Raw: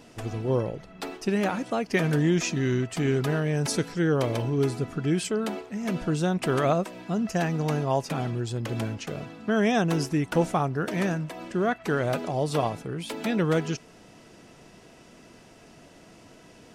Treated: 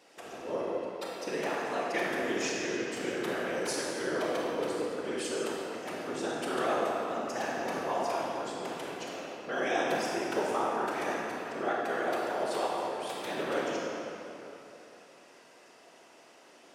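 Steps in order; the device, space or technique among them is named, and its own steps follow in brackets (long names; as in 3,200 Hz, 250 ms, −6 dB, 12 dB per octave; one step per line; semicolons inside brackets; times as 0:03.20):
whispering ghost (random phases in short frames; high-pass filter 460 Hz 12 dB per octave; convolution reverb RT60 3.3 s, pre-delay 25 ms, DRR −3.5 dB)
level −7 dB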